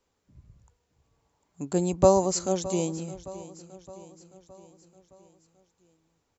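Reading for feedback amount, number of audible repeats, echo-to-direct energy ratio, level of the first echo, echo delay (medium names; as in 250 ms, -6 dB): 54%, 4, -15.5 dB, -17.0 dB, 616 ms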